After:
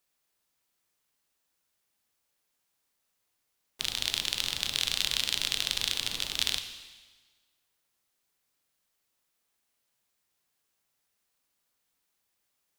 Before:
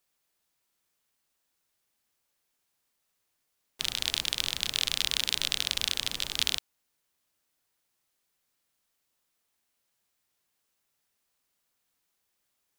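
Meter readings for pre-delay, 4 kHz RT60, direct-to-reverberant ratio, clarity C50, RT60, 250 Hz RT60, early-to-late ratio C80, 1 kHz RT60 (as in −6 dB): 12 ms, 1.4 s, 7.5 dB, 9.5 dB, 1.4 s, 1.3 s, 10.5 dB, 1.4 s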